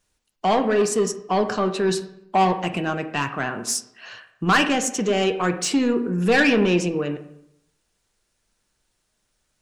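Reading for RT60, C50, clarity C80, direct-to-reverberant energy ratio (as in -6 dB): 0.80 s, 11.5 dB, 14.0 dB, 7.0 dB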